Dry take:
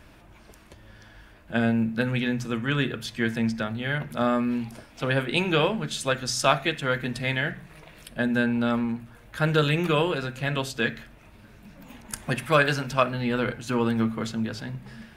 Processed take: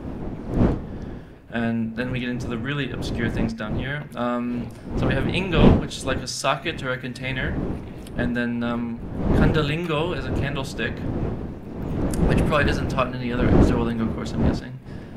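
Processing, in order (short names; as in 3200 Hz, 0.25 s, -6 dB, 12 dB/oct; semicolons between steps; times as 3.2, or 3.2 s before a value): wind noise 270 Hz -24 dBFS; Doppler distortion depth 0.17 ms; gain -1 dB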